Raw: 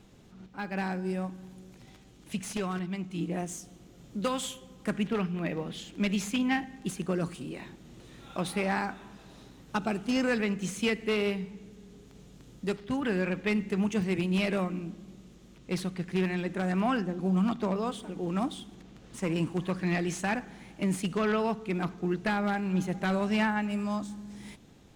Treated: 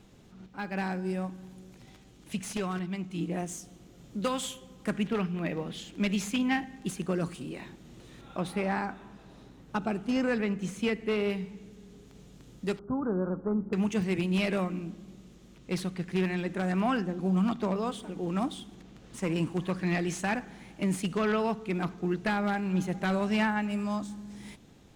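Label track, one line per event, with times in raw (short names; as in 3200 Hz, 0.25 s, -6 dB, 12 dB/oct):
8.210000	11.300000	high shelf 2400 Hz -7.5 dB
12.790000	13.730000	Chebyshev low-pass 1400 Hz, order 6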